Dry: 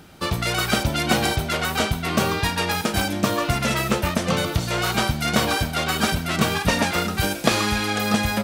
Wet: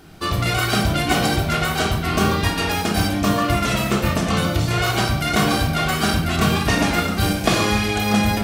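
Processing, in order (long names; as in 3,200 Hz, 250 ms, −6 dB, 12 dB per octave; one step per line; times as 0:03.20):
rectangular room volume 2,100 cubic metres, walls furnished, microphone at 3.3 metres
level −1.5 dB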